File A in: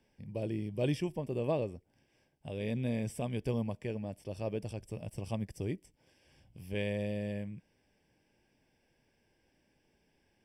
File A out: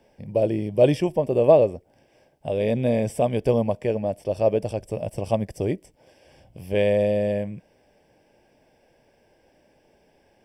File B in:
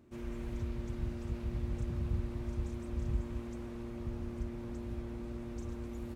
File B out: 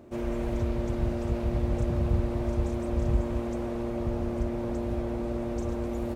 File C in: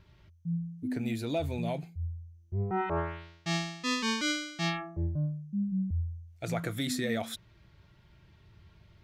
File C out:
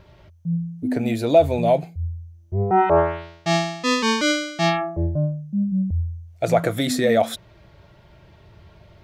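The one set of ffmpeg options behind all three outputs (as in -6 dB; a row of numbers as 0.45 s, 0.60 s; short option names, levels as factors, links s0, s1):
-af "equalizer=f=610:w=1.2:g=11.5,volume=2.51"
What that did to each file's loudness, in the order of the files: +14.0 LU, +9.5 LU, +12.0 LU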